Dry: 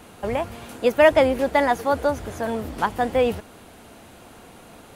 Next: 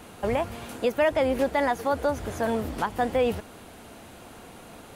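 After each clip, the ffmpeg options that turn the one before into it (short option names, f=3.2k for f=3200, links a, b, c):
-af "alimiter=limit=-14.5dB:level=0:latency=1:release=192"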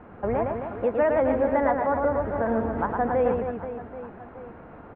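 -filter_complex "[0:a]lowpass=f=1.7k:w=0.5412,lowpass=f=1.7k:w=1.3066,asplit=2[a][b];[b]aecho=0:1:110|264|479.6|781.4|1204:0.631|0.398|0.251|0.158|0.1[c];[a][c]amix=inputs=2:normalize=0"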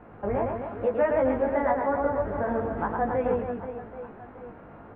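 -af "flanger=delay=18:depth=2.6:speed=1,volume=1dB"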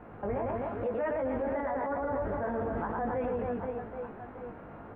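-af "alimiter=level_in=1dB:limit=-24dB:level=0:latency=1:release=31,volume=-1dB"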